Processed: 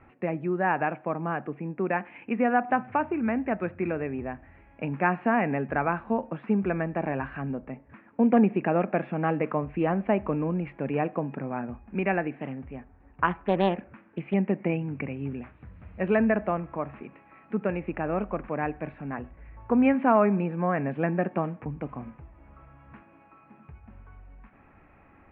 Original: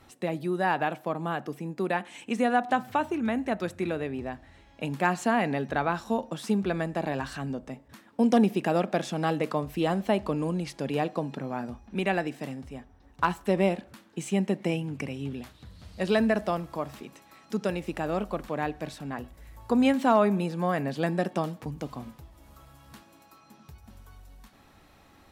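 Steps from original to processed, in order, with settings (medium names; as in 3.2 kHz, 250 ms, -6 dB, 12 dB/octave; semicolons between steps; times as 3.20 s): Chebyshev low-pass 2.5 kHz, order 5; 12.34–14.34 s: loudspeaker Doppler distortion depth 0.31 ms; trim +1.5 dB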